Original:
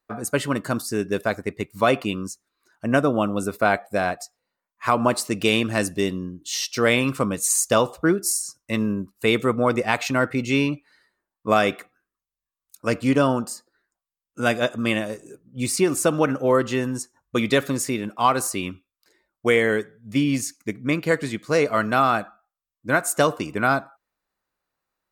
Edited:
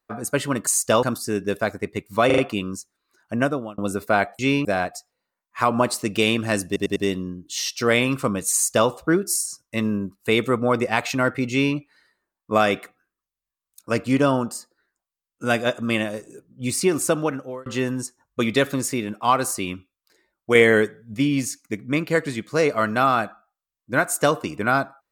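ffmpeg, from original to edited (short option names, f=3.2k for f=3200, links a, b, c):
-filter_complex "[0:a]asplit=15[a][b][c][d][e][f][g][h][i][j][k][l][m][n][o];[a]atrim=end=0.672[p];[b]atrim=start=7.488:end=7.852[q];[c]atrim=start=0.668:end=1.942[r];[d]atrim=start=1.898:end=1.942[s];[e]atrim=start=1.898:end=1.942[t];[f]atrim=start=1.898:end=3.3,asetpts=PTS-STARTPTS,afade=t=out:st=0.972:d=0.43[u];[g]atrim=start=3.3:end=3.912,asetpts=PTS-STARTPTS,afade=t=in:d=0.004:c=hsin[v];[h]atrim=start=10.458:end=10.722[w];[i]atrim=start=3.908:end=6.022[x];[j]atrim=start=5.918:end=6.022[y];[k]atrim=start=5.918:end=6.022[z];[l]atrim=start=5.918:end=16.62,asetpts=PTS-STARTPTS,afade=t=out:st=10.102:d=0.6[aa];[m]atrim=start=16.62:end=19.512,asetpts=PTS-STARTPTS,afade=t=in:d=0.004:c=hsin[ab];[n]atrim=start=19.508:end=20.102,asetpts=PTS-STARTPTS,volume=4.5dB[ac];[o]atrim=start=20.098[ad];[p][q]acrossfade=d=0.004:c1=hsin:c2=hsin[ae];[ae][r]acrossfade=d=0.004:c1=hsin:c2=hsin[af];[af][s]acrossfade=d=0.004:c1=hsin:c2=hsin[ag];[ag][t]acrossfade=d=0.004:c1=hsin:c2=hsin[ah];[u][v]concat=n=2:v=0:a=1[ai];[ah][ai]acrossfade=d=0.004:c1=hsin:c2=hsin[aj];[aj][w]acrossfade=d=0.004:c1=hsin:c2=hsin[ak];[ak][x]acrossfade=d=0.004:c1=hsin:c2=hsin[al];[al][y]acrossfade=d=0.004:c1=hsin:c2=hsin[am];[am][z]acrossfade=d=0.004:c1=hsin:c2=hsin[an];[aa][ab]concat=n=2:v=0:a=1[ao];[an][ao]acrossfade=d=0.004:c1=hsin:c2=hsin[ap];[ap][ac]acrossfade=d=0.004:c1=hsin:c2=hsin[aq];[aq][ad]acrossfade=d=0.004:c1=hsin:c2=hsin"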